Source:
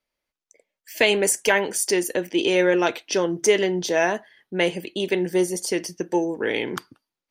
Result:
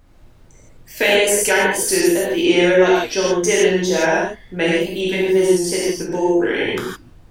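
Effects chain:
tape wow and flutter 81 cents
background noise brown −49 dBFS
reverb whose tail is shaped and stops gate 190 ms flat, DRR −6 dB
level −1.5 dB

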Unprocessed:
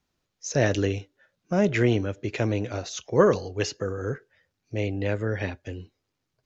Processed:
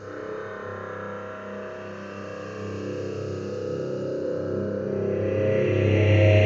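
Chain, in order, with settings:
low-shelf EQ 370 Hz −5 dB
notch filter 3,500 Hz, Q 18
on a send: echo with a time of its own for lows and highs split 520 Hz, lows 715 ms, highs 294 ms, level −16 dB
on the sum: extreme stretch with random phases 16×, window 0.25 s, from 0:04.36
spring reverb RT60 3.1 s, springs 30 ms, chirp 30 ms, DRR −9 dB
level +5.5 dB

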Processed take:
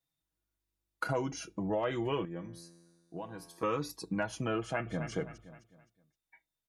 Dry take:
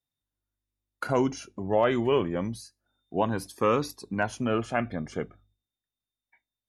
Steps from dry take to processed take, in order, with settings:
comb filter 6.2 ms, depth 66%
0:04.60–0:05.11: delay throw 260 ms, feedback 35%, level −12.5 dB
downward compressor 3 to 1, threshold −32 dBFS, peak gain reduction 11 dB
0:02.25–0:03.63: tuned comb filter 85 Hz, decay 1.6 s, harmonics all, mix 70%

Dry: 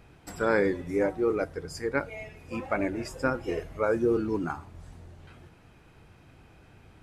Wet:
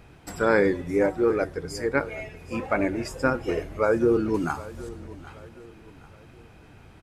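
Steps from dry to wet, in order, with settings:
0:04.34–0:04.89: high-shelf EQ 3,600 Hz +11 dB
repeating echo 770 ms, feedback 40%, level −18.5 dB
level +4 dB

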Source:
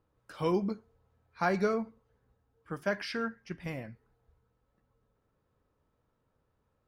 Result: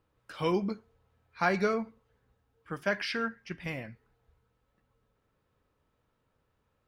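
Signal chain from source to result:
parametric band 2,700 Hz +6.5 dB 1.7 octaves

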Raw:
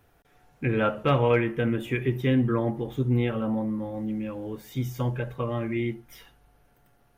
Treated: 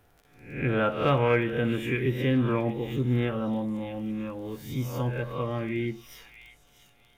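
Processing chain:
peak hold with a rise ahead of every peak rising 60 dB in 0.54 s
surface crackle 18 per second −42 dBFS
echo through a band-pass that steps 637 ms, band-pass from 3,000 Hz, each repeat 0.7 octaves, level −8 dB
level −2 dB

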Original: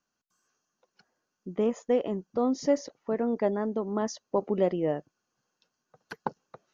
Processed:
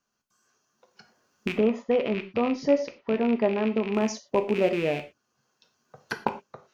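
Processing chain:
loose part that buzzes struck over −41 dBFS, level −26 dBFS
camcorder AGC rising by 7.9 dB per second
0:01.52–0:03.93: low-pass filter 4,800 Hz 24 dB per octave
reverb whose tail is shaped and stops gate 140 ms falling, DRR 6 dB
level +1.5 dB

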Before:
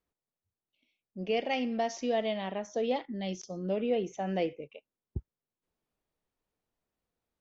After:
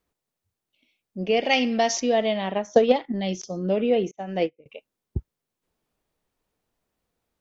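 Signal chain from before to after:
0:01.43–0:02.00: high-shelf EQ 2,200 Hz +9.5 dB
0:02.54–0:03.20: transient designer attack +10 dB, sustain −3 dB
0:04.11–0:04.66: expander for the loud parts 2.5 to 1, over −48 dBFS
level +8 dB

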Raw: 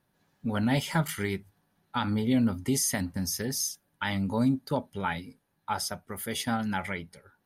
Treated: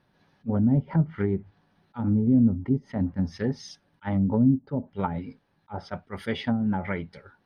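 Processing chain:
Savitzky-Golay smoothing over 15 samples
treble cut that deepens with the level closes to 310 Hz, closed at −24.5 dBFS
level that may rise only so fast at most 490 dB per second
level +6.5 dB

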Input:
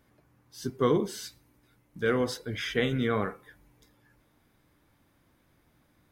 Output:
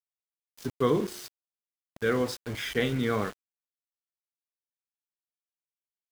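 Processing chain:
hum removal 178.2 Hz, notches 6
centre clipping without the shift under −37.5 dBFS

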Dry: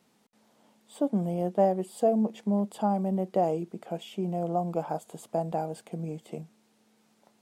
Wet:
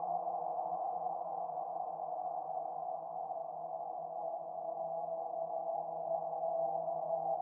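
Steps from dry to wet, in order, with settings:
extreme stretch with random phases 12×, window 1.00 s, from 0:04.85
formant resonators in series a
level +3 dB

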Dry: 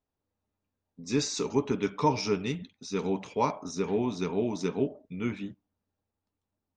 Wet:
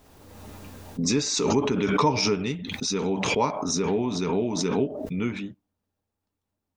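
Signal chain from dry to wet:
background raised ahead of every attack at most 31 dB per second
level +2 dB

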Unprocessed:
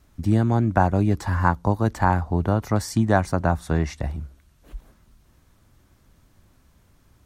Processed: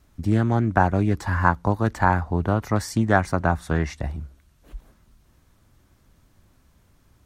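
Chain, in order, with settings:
dynamic equaliser 1,800 Hz, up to +6 dB, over −39 dBFS, Q 1.1
highs frequency-modulated by the lows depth 0.15 ms
level −1 dB

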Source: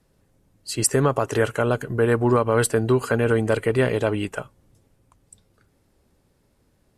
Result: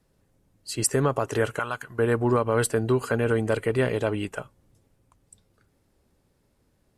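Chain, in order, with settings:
0:01.59–0:01.99: low shelf with overshoot 690 Hz −12 dB, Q 1.5
level −3.5 dB

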